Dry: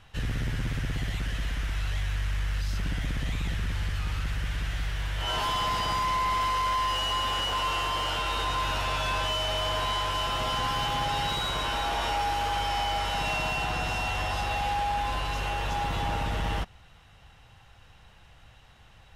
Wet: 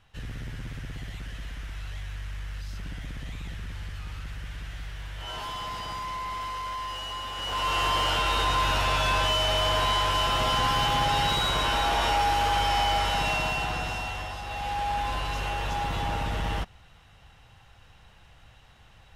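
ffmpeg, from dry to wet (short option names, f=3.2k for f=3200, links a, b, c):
-af "volume=11.5dB,afade=t=in:st=7.35:d=0.52:silence=0.281838,afade=t=out:st=12.92:d=1.49:silence=0.266073,afade=t=in:st=14.41:d=0.51:silence=0.421697"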